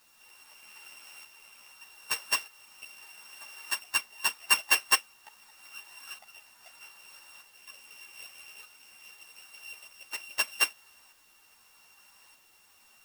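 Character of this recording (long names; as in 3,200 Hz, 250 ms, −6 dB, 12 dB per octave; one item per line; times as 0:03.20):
a buzz of ramps at a fixed pitch in blocks of 16 samples
tremolo saw up 0.81 Hz, depth 60%
a quantiser's noise floor 12 bits, dither triangular
a shimmering, thickened sound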